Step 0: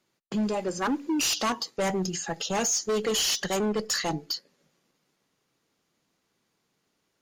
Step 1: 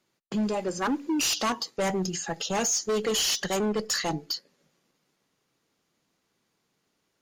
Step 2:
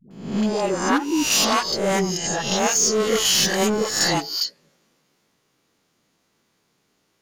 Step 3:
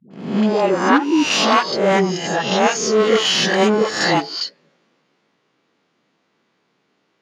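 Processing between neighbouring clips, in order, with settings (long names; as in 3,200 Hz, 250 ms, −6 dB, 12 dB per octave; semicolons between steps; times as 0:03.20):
no processing that can be heard
peak hold with a rise ahead of every peak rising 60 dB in 0.65 s; all-pass dispersion highs, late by 109 ms, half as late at 450 Hz; level +5 dB
in parallel at −10.5 dB: bit-depth reduction 6 bits, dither none; on the sum: band-pass filter 170–3,400 Hz; level +4 dB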